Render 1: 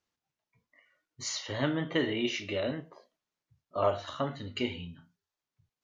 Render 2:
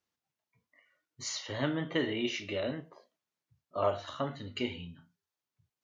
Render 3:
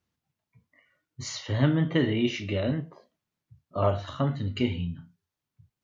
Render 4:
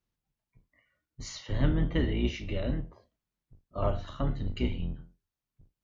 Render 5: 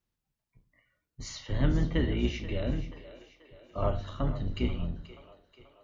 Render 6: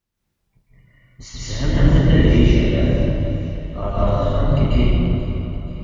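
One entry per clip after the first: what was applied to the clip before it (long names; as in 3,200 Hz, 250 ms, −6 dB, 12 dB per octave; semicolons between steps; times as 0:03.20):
high-pass filter 63 Hz; level −2 dB
bass and treble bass +13 dB, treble −3 dB; level +3 dB
sub-octave generator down 2 octaves, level +3 dB; level −6 dB
echo with a time of its own for lows and highs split 370 Hz, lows 102 ms, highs 483 ms, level −14 dB
convolution reverb RT60 2.4 s, pre-delay 134 ms, DRR −9.5 dB; level +3 dB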